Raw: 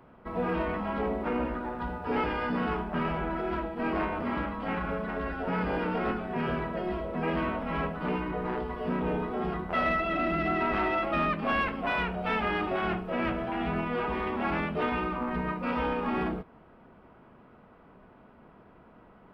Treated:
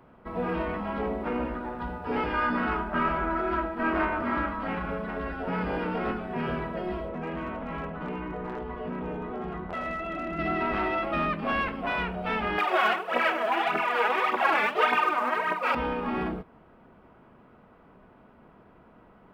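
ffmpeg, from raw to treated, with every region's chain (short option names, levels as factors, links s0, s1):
-filter_complex "[0:a]asettb=1/sr,asplit=3[s0][s1][s2];[s0]atrim=end=2.334[s3];[s1]atrim=start=2.33:end=4.67,asetpts=PTS-STARTPTS,afade=t=in:d=0.004:c=qsin,afade=t=out:st=2.336:d=0.004:c=qsin,equalizer=f=1400:w=1.8:g=7.5,aecho=1:1:3.2:0.4,atrim=end_sample=103194[s4];[s2]atrim=start=4.666[s5];[s3][s4]acrossfade=d=0.004:c1=hsin:c2=qsin[s6];[s6][s5]acrossfade=d=0.004:c1=qsin:c2=hsin,asettb=1/sr,asplit=3[s7][s8][s9];[s7]atrim=end=7.094[s10];[s8]atrim=start=7.09:end=10.39,asetpts=PTS-STARTPTS,afade=t=in:d=0.004:c=qsin,afade=t=out:st=3.296:d=0.004:c=qsin,lowpass=3100,acompressor=threshold=0.0282:ratio=3:attack=3.2:release=140:knee=1:detection=peak,volume=22.4,asoftclip=hard,volume=0.0447[s11];[s9]atrim=start=10.386[s12];[s10][s11]acrossfade=d=0.004:c1=hsin:c2=qsin[s13];[s13][s12]acrossfade=d=0.004:c1=qsin:c2=hsin,asettb=1/sr,asplit=3[s14][s15][s16];[s14]atrim=end=12.584[s17];[s15]atrim=start=12.58:end=15.75,asetpts=PTS-STARTPTS,afade=t=in:d=0.004:c=qsin,afade=t=out:st=3.166:d=0.004:c=qsin,aphaser=in_gain=1:out_gain=1:delay=4.9:decay=0.67:speed=1.7:type=triangular,acontrast=79,highpass=660[s18];[s16]atrim=start=15.746[s19];[s17][s18]acrossfade=d=0.004:c1=hsin:c2=qsin[s20];[s20][s19]acrossfade=d=0.004:c1=qsin:c2=hsin"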